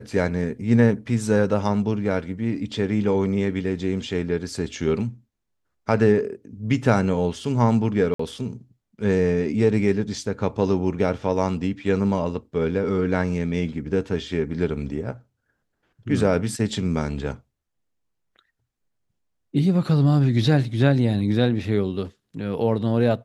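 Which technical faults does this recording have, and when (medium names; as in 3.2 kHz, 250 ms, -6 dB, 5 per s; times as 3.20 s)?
8.14–8.19 s: dropout 54 ms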